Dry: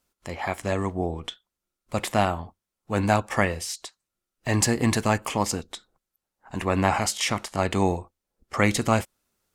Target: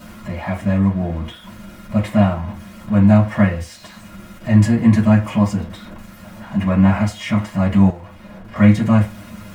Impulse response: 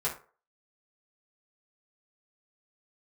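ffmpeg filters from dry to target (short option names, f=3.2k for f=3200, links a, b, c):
-filter_complex "[0:a]aeval=exprs='val(0)+0.5*0.0299*sgn(val(0))':c=same,bass=f=250:g=13,treble=f=4k:g=-9[a];[1:a]atrim=start_sample=2205,asetrate=61740,aresample=44100[b];[a][b]afir=irnorm=-1:irlink=0,asettb=1/sr,asplit=3[c][d][e];[c]atrim=end=7.904[f];[d]atrim=start=7.9:end=8.56,asetpts=PTS-STARTPTS,afade=t=in:d=0.004:c=qsin,afade=t=out:st=0.656:d=0.004:c=qsin,acrossover=split=390|4600[g][h][i];[g]acompressor=threshold=-31dB:ratio=4[j];[h]acompressor=threshold=-32dB:ratio=4[k];[i]acompressor=threshold=-60dB:ratio=4[l];[j][k][l]amix=inputs=3:normalize=0[m];[e]atrim=start=8.556[n];[f][m]acrossfade=d=0.004:c1=hsin:c2=qsin[o];[o][n]acrossfade=d=0.004:c1=qsin:c2=hsin,volume=-4.5dB"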